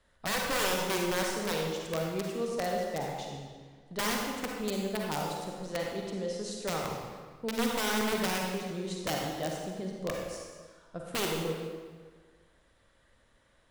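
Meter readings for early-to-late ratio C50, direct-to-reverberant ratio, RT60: 0.5 dB, -1.0 dB, 1.5 s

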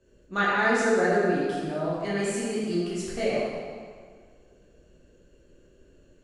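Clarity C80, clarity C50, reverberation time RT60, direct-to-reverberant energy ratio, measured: -0.5 dB, -2.5 dB, 1.8 s, -9.5 dB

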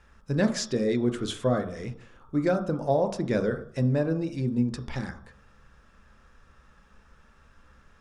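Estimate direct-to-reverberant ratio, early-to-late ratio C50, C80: 5.0 dB, 9.5 dB, 13.5 dB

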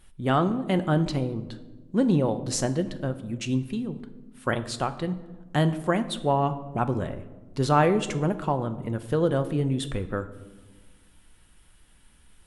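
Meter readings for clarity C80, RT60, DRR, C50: 16.0 dB, 1.3 s, 9.0 dB, 14.0 dB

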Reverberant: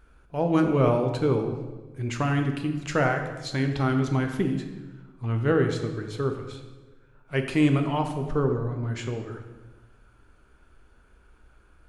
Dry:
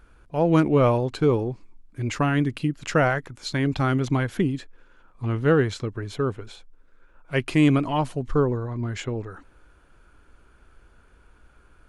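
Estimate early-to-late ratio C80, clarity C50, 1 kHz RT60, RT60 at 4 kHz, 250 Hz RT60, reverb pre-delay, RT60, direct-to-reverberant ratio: 9.0 dB, 7.0 dB, 1.2 s, 0.95 s, 1.5 s, 4 ms, 1.3 s, 4.0 dB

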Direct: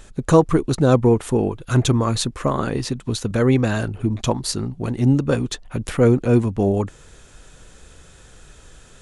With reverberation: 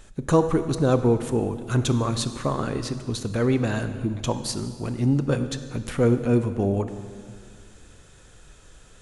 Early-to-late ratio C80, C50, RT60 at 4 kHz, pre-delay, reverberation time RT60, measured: 11.5 dB, 11.0 dB, 1.8 s, 19 ms, 2.0 s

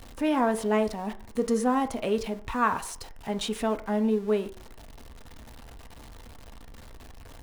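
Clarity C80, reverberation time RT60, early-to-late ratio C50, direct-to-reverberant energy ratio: 20.0 dB, 0.50 s, 16.5 dB, 8.0 dB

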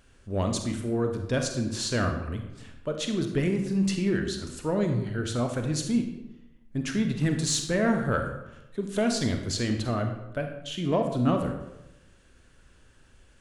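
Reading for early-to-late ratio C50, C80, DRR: 6.5 dB, 9.0 dB, 4.5 dB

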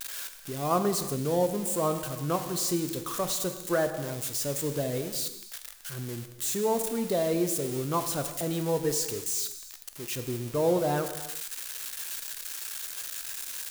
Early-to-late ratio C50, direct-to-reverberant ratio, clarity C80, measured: 9.5 dB, 7.5 dB, 10.5 dB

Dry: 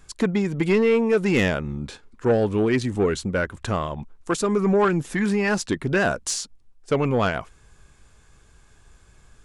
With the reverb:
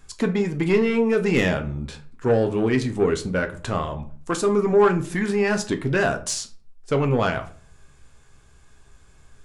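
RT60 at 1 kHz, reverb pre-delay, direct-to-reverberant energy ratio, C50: 0.40 s, 7 ms, 6.0 dB, 14.0 dB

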